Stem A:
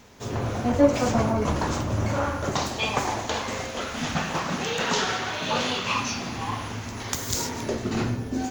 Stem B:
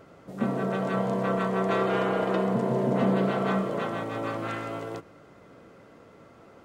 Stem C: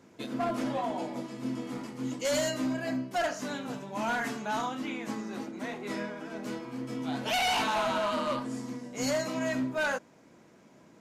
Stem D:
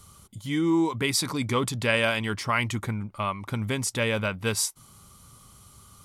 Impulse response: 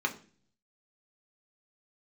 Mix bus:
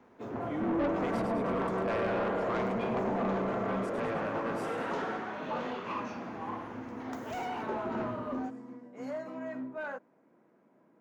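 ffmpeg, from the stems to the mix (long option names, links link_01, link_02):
-filter_complex "[0:a]volume=-6dB[link_01];[1:a]adelay=200,volume=-2.5dB[link_02];[2:a]volume=-6.5dB[link_03];[3:a]agate=range=-33dB:threshold=-41dB:ratio=3:detection=peak,volume=-6.5dB,asplit=3[link_04][link_05][link_06];[link_05]volume=-7dB[link_07];[link_06]apad=whole_len=485488[link_08];[link_03][link_08]sidechaincompress=threshold=-40dB:ratio=8:attack=16:release=139[link_09];[link_07]aecho=0:1:103|206|309|412|515|618|721|824|927:1|0.59|0.348|0.205|0.121|0.0715|0.0422|0.0249|0.0147[link_10];[link_01][link_02][link_09][link_04][link_10]amix=inputs=5:normalize=0,acrossover=split=170 2000:gain=0.158 1 0.141[link_11][link_12][link_13];[link_11][link_12][link_13]amix=inputs=3:normalize=0,asoftclip=type=tanh:threshold=-26dB,equalizer=frequency=8700:width_type=o:width=2.7:gain=-6"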